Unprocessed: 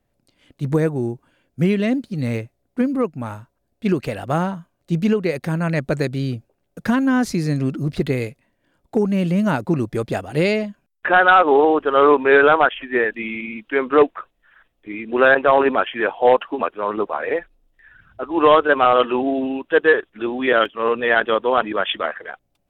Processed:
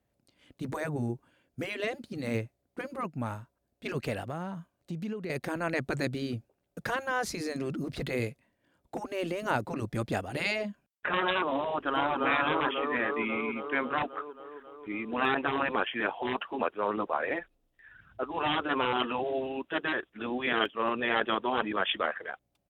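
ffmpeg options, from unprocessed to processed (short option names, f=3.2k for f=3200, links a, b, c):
-filter_complex "[0:a]asettb=1/sr,asplit=3[a][b][c];[a]atrim=end=4.204[d];[b]atrim=start=4.2:end=5.3,asetpts=PTS-STARTPTS,afade=t=in:d=0.004:c=qsin,afade=t=out:st=1.096:d=0.004:c=qsin,acompressor=threshold=-29dB:ratio=4:attack=3.2:release=140:knee=1:detection=peak[e];[c]atrim=start=5.296[f];[d][e]acrossfade=d=0.004:c1=hsin:c2=qsin[g];[g][f]acrossfade=d=0.004:c1=qsin:c2=hsin,asplit=2[h][i];[i]afade=t=in:st=11.69:d=0.01,afade=t=out:st=12.23:d=0.01,aecho=0:1:270|540|810|1080|1350|1620|1890|2160|2430|2700|2970|3240:0.375837|0.281878|0.211409|0.158556|0.118917|0.089188|0.066891|0.0501682|0.0376262|0.0282196|0.0211647|0.0158735[j];[h][j]amix=inputs=2:normalize=0,highpass=43,afftfilt=real='re*lt(hypot(re,im),0.631)':imag='im*lt(hypot(re,im),0.631)':win_size=1024:overlap=0.75,volume=-5.5dB"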